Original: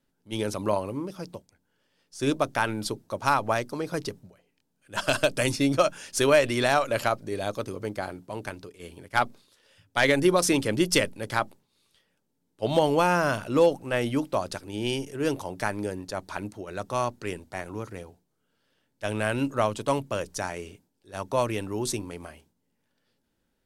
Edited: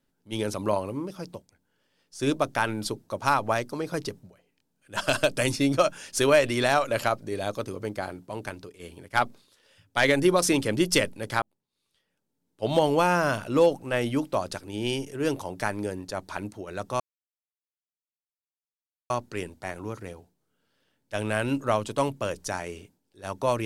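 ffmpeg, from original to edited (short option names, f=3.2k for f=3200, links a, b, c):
-filter_complex "[0:a]asplit=3[a][b][c];[a]atrim=end=11.42,asetpts=PTS-STARTPTS,afade=t=out:st=11.416:d=0.004:c=hsin[d];[b]atrim=start=11.42:end=17,asetpts=PTS-STARTPTS,afade=t=in:d=1.29,afade=t=out:st=5.576:d=0.004:c=hsin,apad=pad_dur=2.1[e];[c]atrim=start=17,asetpts=PTS-STARTPTS,afade=t=in:d=0.004:c=hsin[f];[d][e][f]concat=n=3:v=0:a=1"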